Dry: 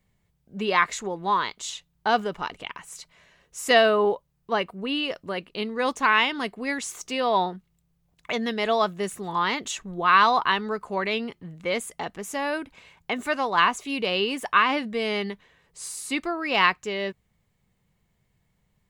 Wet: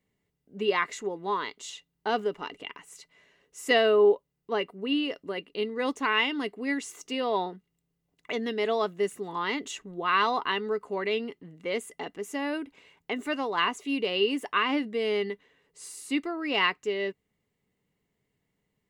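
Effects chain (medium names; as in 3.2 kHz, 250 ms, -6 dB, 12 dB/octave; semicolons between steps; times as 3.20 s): bass shelf 85 Hz -11 dB; small resonant body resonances 290/410/2000/2800 Hz, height 11 dB, ringing for 45 ms; trim -7.5 dB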